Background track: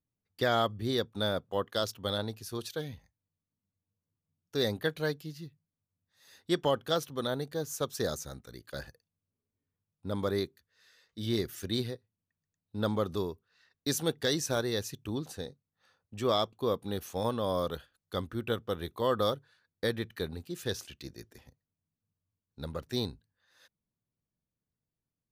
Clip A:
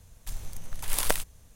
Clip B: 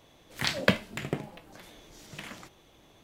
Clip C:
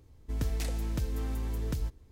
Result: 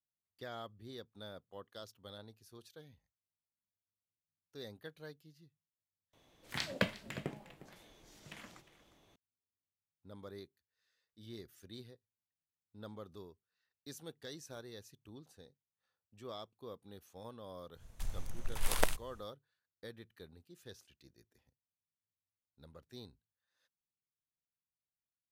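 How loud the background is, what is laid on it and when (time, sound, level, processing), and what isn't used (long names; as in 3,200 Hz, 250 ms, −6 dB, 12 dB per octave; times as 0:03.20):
background track −18.5 dB
0:06.13: overwrite with B −9.5 dB + single-tap delay 356 ms −16.5 dB
0:17.73: mix in A −3 dB, fades 0.10 s + high-shelf EQ 4,700 Hz −8.5 dB
not used: C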